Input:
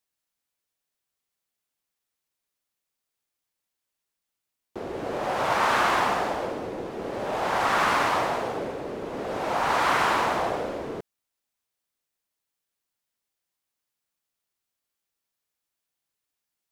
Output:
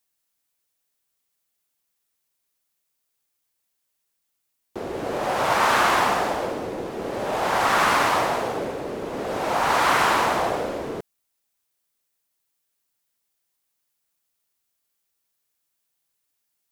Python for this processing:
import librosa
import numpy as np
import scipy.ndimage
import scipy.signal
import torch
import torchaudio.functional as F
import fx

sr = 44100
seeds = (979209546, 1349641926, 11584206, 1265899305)

y = fx.high_shelf(x, sr, hz=7000.0, db=7.0)
y = y * librosa.db_to_amplitude(3.0)